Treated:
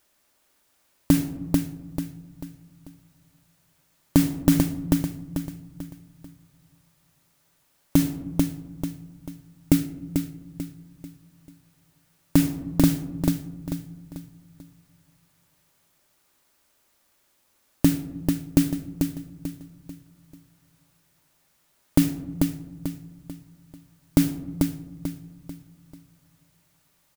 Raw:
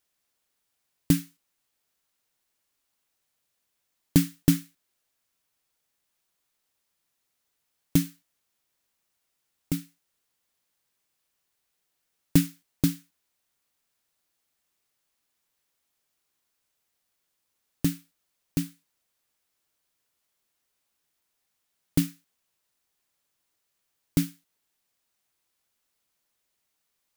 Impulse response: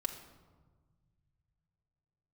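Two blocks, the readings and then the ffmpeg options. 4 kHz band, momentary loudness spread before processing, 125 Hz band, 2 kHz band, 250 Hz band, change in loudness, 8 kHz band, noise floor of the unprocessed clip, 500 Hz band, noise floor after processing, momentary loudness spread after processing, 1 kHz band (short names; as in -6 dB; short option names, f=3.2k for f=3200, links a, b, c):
+3.0 dB, 11 LU, +4.5 dB, +4.5 dB, +7.0 dB, +2.0 dB, +3.0 dB, -79 dBFS, +8.5 dB, -67 dBFS, 20 LU, +12.0 dB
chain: -filter_complex "[0:a]acompressor=threshold=-25dB:ratio=2.5,aecho=1:1:441|882|1323|1764:0.398|0.151|0.0575|0.0218,asplit=2[a][b];[1:a]atrim=start_sample=2205,lowpass=2.2k,lowshelf=f=70:g=-9[c];[b][c]afir=irnorm=-1:irlink=0,volume=-5dB[d];[a][d]amix=inputs=2:normalize=0,alimiter=level_in=11.5dB:limit=-1dB:release=50:level=0:latency=1,volume=-1dB"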